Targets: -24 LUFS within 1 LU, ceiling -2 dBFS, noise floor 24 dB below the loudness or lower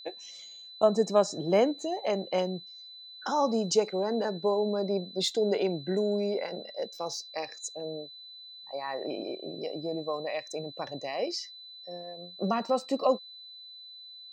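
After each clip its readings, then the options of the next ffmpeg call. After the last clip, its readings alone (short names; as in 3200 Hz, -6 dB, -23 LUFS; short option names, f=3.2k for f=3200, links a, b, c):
steady tone 4000 Hz; tone level -45 dBFS; loudness -30.5 LUFS; peak -9.5 dBFS; loudness target -24.0 LUFS
-> -af "bandreject=f=4k:w=30"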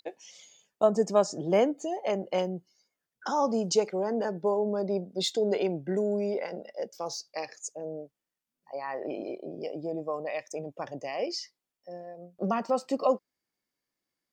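steady tone none; loudness -30.5 LUFS; peak -10.0 dBFS; loudness target -24.0 LUFS
-> -af "volume=6.5dB"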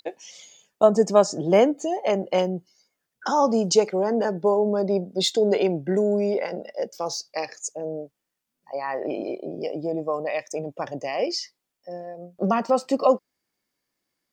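loudness -24.0 LUFS; peak -3.5 dBFS; noise floor -82 dBFS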